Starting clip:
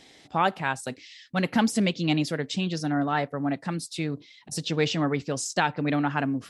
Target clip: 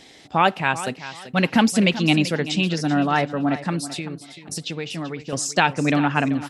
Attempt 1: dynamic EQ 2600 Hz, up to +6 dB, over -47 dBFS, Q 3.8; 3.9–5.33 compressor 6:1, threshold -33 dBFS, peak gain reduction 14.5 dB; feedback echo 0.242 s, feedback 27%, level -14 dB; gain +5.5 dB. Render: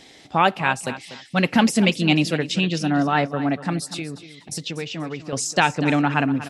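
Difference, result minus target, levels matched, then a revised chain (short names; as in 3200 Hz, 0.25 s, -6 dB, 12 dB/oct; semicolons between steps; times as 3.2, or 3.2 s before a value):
echo 0.144 s early
dynamic EQ 2600 Hz, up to +6 dB, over -47 dBFS, Q 3.8; 3.9–5.33 compressor 6:1, threshold -33 dBFS, peak gain reduction 14.5 dB; feedback echo 0.386 s, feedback 27%, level -14 dB; gain +5.5 dB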